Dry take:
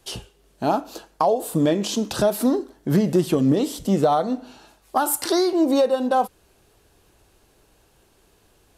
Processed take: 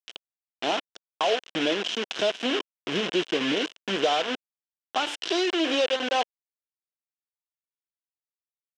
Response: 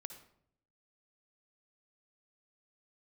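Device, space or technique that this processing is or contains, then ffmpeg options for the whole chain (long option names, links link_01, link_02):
hand-held game console: -af "acrusher=bits=3:mix=0:aa=0.000001,highpass=470,equalizer=frequency=580:width_type=q:width=4:gain=-5,equalizer=frequency=860:width_type=q:width=4:gain=-8,equalizer=frequency=1200:width_type=q:width=4:gain=-7,equalizer=frequency=2000:width_type=q:width=4:gain=-4,equalizer=frequency=3000:width_type=q:width=4:gain=8,equalizer=frequency=4500:width_type=q:width=4:gain=-8,lowpass=frequency=5100:width=0.5412,lowpass=frequency=5100:width=1.3066"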